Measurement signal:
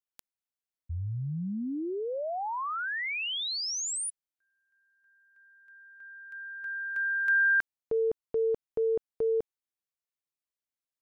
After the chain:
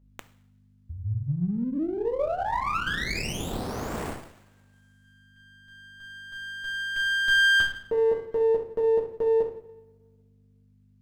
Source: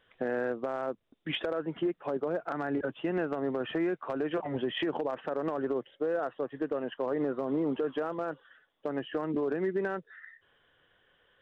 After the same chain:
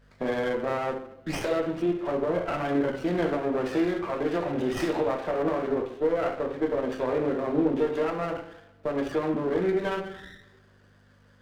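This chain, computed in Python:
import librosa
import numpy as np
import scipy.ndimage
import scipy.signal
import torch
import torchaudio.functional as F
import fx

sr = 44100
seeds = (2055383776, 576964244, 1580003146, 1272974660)

y = fx.add_hum(x, sr, base_hz=50, snr_db=29)
y = fx.rev_double_slope(y, sr, seeds[0], early_s=0.63, late_s=1.8, knee_db=-22, drr_db=-2.5)
y = fx.running_max(y, sr, window=9)
y = y * 10.0 ** (1.5 / 20.0)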